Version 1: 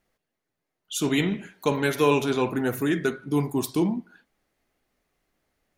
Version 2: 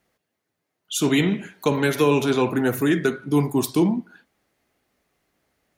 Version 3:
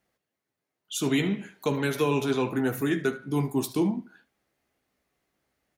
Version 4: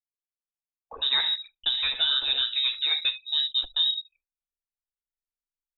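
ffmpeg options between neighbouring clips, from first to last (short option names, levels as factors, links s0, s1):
-filter_complex "[0:a]highpass=60,acrossover=split=380[s0][s1];[s1]acompressor=threshold=0.0631:ratio=6[s2];[s0][s2]amix=inputs=2:normalize=0,volume=1.68"
-af "aecho=1:1:15|75:0.335|0.126,volume=0.473"
-af "lowpass=f=3400:t=q:w=0.5098,lowpass=f=3400:t=q:w=0.6013,lowpass=f=3400:t=q:w=0.9,lowpass=f=3400:t=q:w=2.563,afreqshift=-4000,asubboost=boost=7.5:cutoff=63,anlmdn=0.398"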